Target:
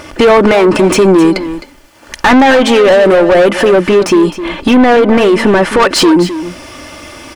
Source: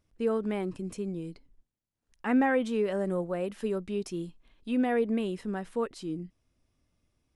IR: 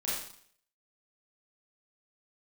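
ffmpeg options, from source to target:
-filter_complex "[0:a]equalizer=f=220:t=o:w=0.21:g=-9,bandreject=f=3.8k:w=14,aecho=1:1:3.4:0.47,acompressor=threshold=-47dB:ratio=3,asetnsamples=n=441:p=0,asendcmd='3.51 lowpass f 1200;5.8 lowpass f 3500',asplit=2[a][b];[b]highpass=f=720:p=1,volume=34dB,asoftclip=type=tanh:threshold=-23.5dB[c];[a][c]amix=inputs=2:normalize=0,lowpass=f=2.2k:p=1,volume=-6dB,aecho=1:1:261:0.224,alimiter=level_in=27dB:limit=-1dB:release=50:level=0:latency=1,volume=-1dB"

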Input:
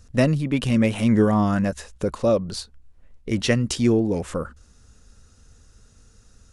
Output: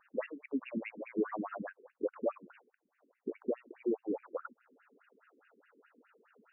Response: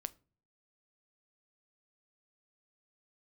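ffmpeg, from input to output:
-af "acompressor=threshold=-41dB:ratio=2,afftfilt=real='re*between(b*sr/1024,300*pow(2100/300,0.5+0.5*sin(2*PI*4.8*pts/sr))/1.41,300*pow(2100/300,0.5+0.5*sin(2*PI*4.8*pts/sr))*1.41)':imag='im*between(b*sr/1024,300*pow(2100/300,0.5+0.5*sin(2*PI*4.8*pts/sr))/1.41,300*pow(2100/300,0.5+0.5*sin(2*PI*4.8*pts/sr))*1.41)':win_size=1024:overlap=0.75,volume=4.5dB"

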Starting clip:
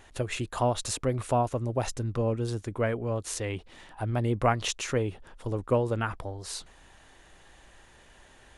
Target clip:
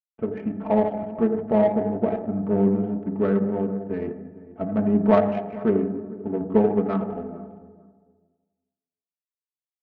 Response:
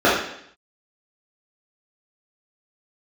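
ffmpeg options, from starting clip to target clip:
-filter_complex "[0:a]lowpass=2.8k,aresample=8000,aeval=exprs='sgn(val(0))*max(abs(val(0))-0.00708,0)':c=same,aresample=44100,bandreject=f=1.2k:w=11,aecho=1:1:4:0.81,asplit=2[a][b];[1:a]atrim=start_sample=2205,asetrate=25137,aresample=44100[c];[b][c]afir=irnorm=-1:irlink=0,volume=-31.5dB[d];[a][d]amix=inputs=2:normalize=0,asetrate=38499,aresample=44100,highpass=100,asplit=2[e][f];[f]adelay=449,lowpass=f=1.1k:p=1,volume=-15.5dB,asplit=2[g][h];[h]adelay=449,lowpass=f=1.1k:p=1,volume=0.22[i];[e][g][i]amix=inputs=3:normalize=0,adynamicsmooth=sensitivity=0.5:basefreq=840,volume=3.5dB"

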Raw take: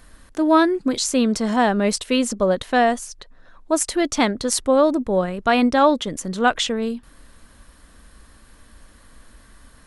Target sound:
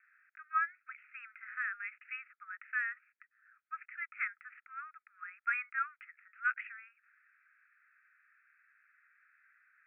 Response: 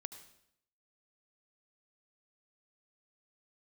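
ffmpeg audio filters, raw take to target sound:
-af "asuperpass=centerf=1800:order=20:qfactor=1.4,volume=-8.5dB"

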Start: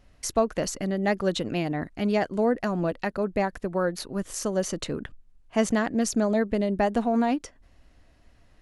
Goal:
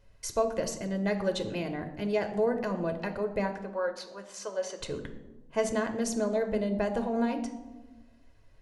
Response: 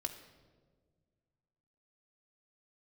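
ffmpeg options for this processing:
-filter_complex "[0:a]asettb=1/sr,asplit=3[a][b][c];[a]atrim=end=3.514[d];[b]atrim=start=3.51:end=4.8,asetpts=PTS-STARTPTS,afade=t=in:d=0.004:c=qsin,afade=t=out:st=1.286:d=0.004:c=qsin,highpass=560,lowpass=5.9k[e];[c]atrim=start=4.796[f];[d][e]acrossfade=d=0.004:c1=hsin:c2=qsin[g];[g][f]acrossfade=d=0.004:c1=qsin:c2=hsin[h];[1:a]atrim=start_sample=2205,asetrate=70560,aresample=44100[i];[h][i]afir=irnorm=-1:irlink=0"

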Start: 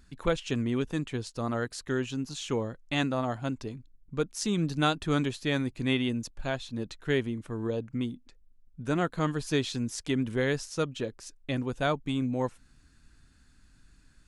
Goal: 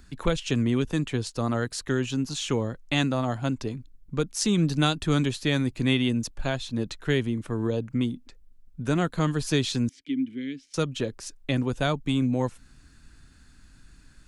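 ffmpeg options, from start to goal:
-filter_complex "[0:a]acrossover=split=230|3000[a][b][c];[b]acompressor=threshold=-35dB:ratio=2[d];[a][d][c]amix=inputs=3:normalize=0,asettb=1/sr,asplit=3[e][f][g];[e]atrim=end=9.894[h];[f]atrim=start=9.89:end=10.74,asetpts=PTS-STARTPTS,afade=t=in:d=0.004:c=qsin,afade=t=out:st=0.846:d=0.004:c=qsin,asplit=3[i][j][k];[i]bandpass=f=270:t=q:w=8,volume=0dB[l];[j]bandpass=f=2.29k:t=q:w=8,volume=-6dB[m];[k]bandpass=f=3.01k:t=q:w=8,volume=-9dB[n];[l][m][n]amix=inputs=3:normalize=0[o];[g]atrim=start=10.736[p];[h][o]acrossfade=d=0.004:c1=hsin:c2=qsin[q];[q][p]acrossfade=d=0.004:c1=qsin:c2=hsin,volume=6.5dB"

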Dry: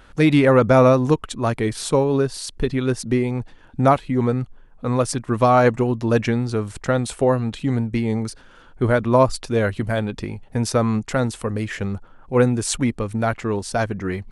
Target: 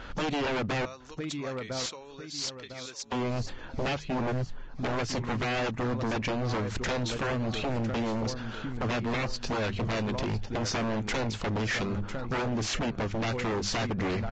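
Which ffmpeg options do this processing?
-filter_complex "[0:a]acompressor=threshold=-26dB:ratio=8,asettb=1/sr,asplit=3[a][b][c];[a]atrim=end=0.854[d];[b]atrim=start=0.85:end=3.12,asetpts=PTS-STARTPTS,afade=t=in:d=0.004:c=qsin,afade=t=out:st=2.266:d=0.004:c=qsin,aderivative[e];[c]atrim=start=3.116[f];[d][e]acrossfade=d=0.004:c1=hsin:c2=qsin[g];[g][f]acrossfade=d=0.004:c1=qsin:c2=hsin,bandreject=f=50:t=h:w=6,bandreject=f=100:t=h:w=6,bandreject=f=150:t=h:w=6,bandreject=f=200:t=h:w=6,aecho=1:1:1003|2006|3009:0.211|0.0719|0.0244,aeval=exprs='0.0355*(abs(mod(val(0)/0.0355+3,4)-2)-1)':c=same,lowpass=5.7k,volume=33.5dB,asoftclip=hard,volume=-33.5dB,volume=6.5dB" -ar 16000 -c:a libvorbis -b:a 32k

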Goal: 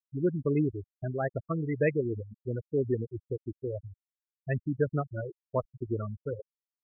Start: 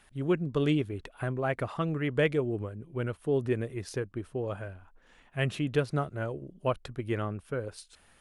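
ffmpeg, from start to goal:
-af "atempo=1.2,afftfilt=real='re*gte(hypot(re,im),0.0891)':imag='im*gte(hypot(re,im),0.0891)':win_size=1024:overlap=0.75"

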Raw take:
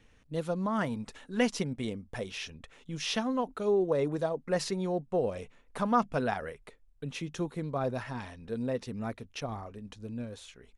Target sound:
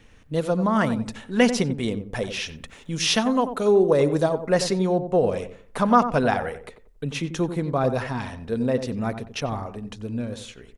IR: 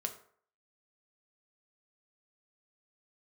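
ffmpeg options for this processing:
-filter_complex "[0:a]asettb=1/sr,asplit=3[a][b][c];[a]atrim=end=2.484[d];[b]atrim=start=2.48:end=4.46,asetpts=PTS-STARTPTS,afade=t=in:d=0.004:c=qsin,afade=t=out:st=1.976:d=0.004:c=qsin,highshelf=f=5.5k:g=7.5[e];[c]atrim=start=4.456[f];[d][e]acrossfade=d=0.004:c1=hsin:c2=qsin[g];[g][f]acrossfade=d=0.004:c1=qsin:c2=hsin,asplit=2[h][i];[i]adelay=91,lowpass=f=1.1k:p=1,volume=-9dB,asplit=2[j][k];[k]adelay=91,lowpass=f=1.1k:p=1,volume=0.33,asplit=2[l][m];[m]adelay=91,lowpass=f=1.1k:p=1,volume=0.33,asplit=2[n][o];[o]adelay=91,lowpass=f=1.1k:p=1,volume=0.33[p];[j][l][n][p]amix=inputs=4:normalize=0[q];[h][q]amix=inputs=2:normalize=0,volume=9dB"

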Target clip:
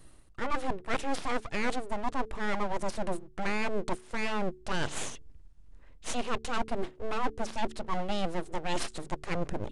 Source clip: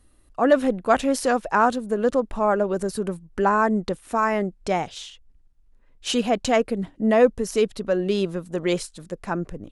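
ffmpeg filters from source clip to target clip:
-af "aeval=exprs='abs(val(0))':c=same,areverse,acompressor=threshold=-32dB:ratio=6,areverse,aresample=22050,aresample=44100,bandreject=f=73.72:t=h:w=4,bandreject=f=147.44:t=h:w=4,bandreject=f=221.16:t=h:w=4,bandreject=f=294.88:t=h:w=4,bandreject=f=368.6:t=h:w=4,bandreject=f=442.32:t=h:w=4,volume=6dB"

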